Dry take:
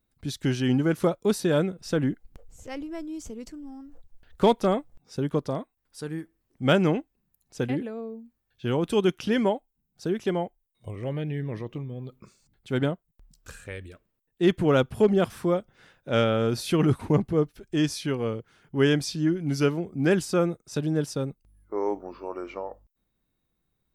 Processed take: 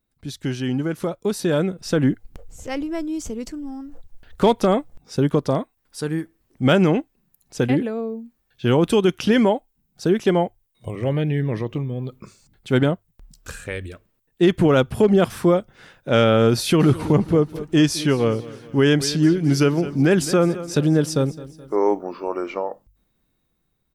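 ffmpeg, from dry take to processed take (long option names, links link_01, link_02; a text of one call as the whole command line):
ffmpeg -i in.wav -filter_complex "[0:a]asplit=3[link_01][link_02][link_03];[link_01]afade=type=out:start_time=16.79:duration=0.02[link_04];[link_02]aecho=1:1:212|424|636|848:0.126|0.0592|0.0278|0.0131,afade=type=in:start_time=16.79:duration=0.02,afade=type=out:start_time=21.75:duration=0.02[link_05];[link_03]afade=type=in:start_time=21.75:duration=0.02[link_06];[link_04][link_05][link_06]amix=inputs=3:normalize=0,alimiter=limit=-16dB:level=0:latency=1:release=99,bandreject=frequency=50:width_type=h:width=6,bandreject=frequency=100:width_type=h:width=6,dynaudnorm=framelen=290:gausssize=11:maxgain=9dB" out.wav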